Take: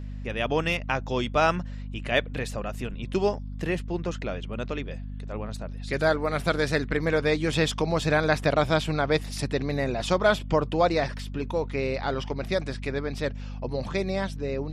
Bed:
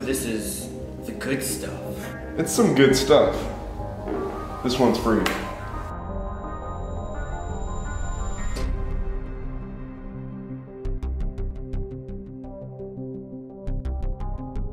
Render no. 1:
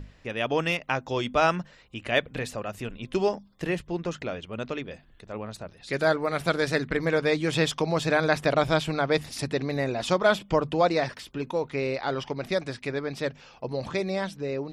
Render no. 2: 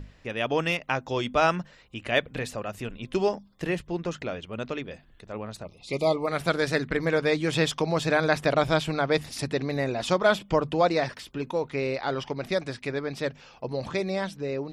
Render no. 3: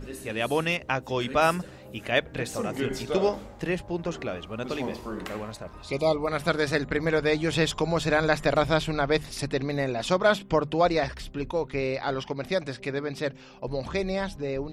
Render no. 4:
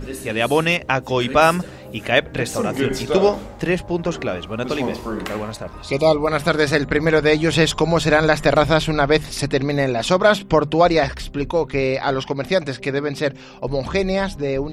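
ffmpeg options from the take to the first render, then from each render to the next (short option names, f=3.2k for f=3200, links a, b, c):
-af "bandreject=f=50:t=h:w=6,bandreject=f=100:t=h:w=6,bandreject=f=150:t=h:w=6,bandreject=f=200:t=h:w=6,bandreject=f=250:t=h:w=6"
-filter_complex "[0:a]asplit=3[a][b][c];[a]afade=t=out:st=5.63:d=0.02[d];[b]asuperstop=centerf=1600:order=20:qfactor=2.1,afade=t=in:st=5.63:d=0.02,afade=t=out:st=6.26:d=0.02[e];[c]afade=t=in:st=6.26:d=0.02[f];[d][e][f]amix=inputs=3:normalize=0"
-filter_complex "[1:a]volume=-14.5dB[a];[0:a][a]amix=inputs=2:normalize=0"
-af "volume=8.5dB,alimiter=limit=-3dB:level=0:latency=1"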